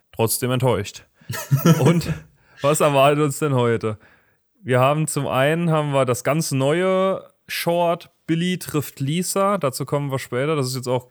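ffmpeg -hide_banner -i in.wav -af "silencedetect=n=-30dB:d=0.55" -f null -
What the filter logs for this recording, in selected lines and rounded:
silence_start: 3.94
silence_end: 4.66 | silence_duration: 0.72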